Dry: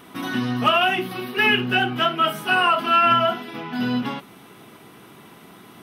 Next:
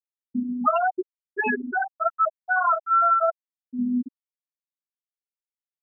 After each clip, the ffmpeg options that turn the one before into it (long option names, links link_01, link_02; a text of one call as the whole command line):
ffmpeg -i in.wav -af "lowpass=1800,afftfilt=real='re*gte(hypot(re,im),0.501)':imag='im*gte(hypot(re,im),0.501)':win_size=1024:overlap=0.75" out.wav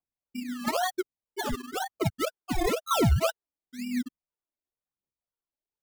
ffmpeg -i in.wav -af "acrusher=samples=24:mix=1:aa=0.000001:lfo=1:lforange=14.4:lforate=2,aphaser=in_gain=1:out_gain=1:delay=3.6:decay=0.54:speed=0.99:type=triangular,volume=-7.5dB" out.wav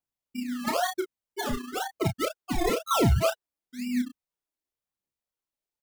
ffmpeg -i in.wav -filter_complex "[0:a]asplit=2[link_01][link_02];[link_02]adelay=32,volume=-6.5dB[link_03];[link_01][link_03]amix=inputs=2:normalize=0" out.wav